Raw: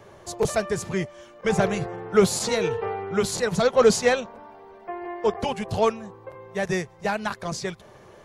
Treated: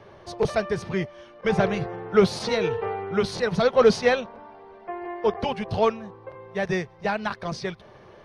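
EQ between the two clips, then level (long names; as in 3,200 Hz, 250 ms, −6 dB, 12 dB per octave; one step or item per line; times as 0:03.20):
Savitzky-Golay smoothing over 15 samples
0.0 dB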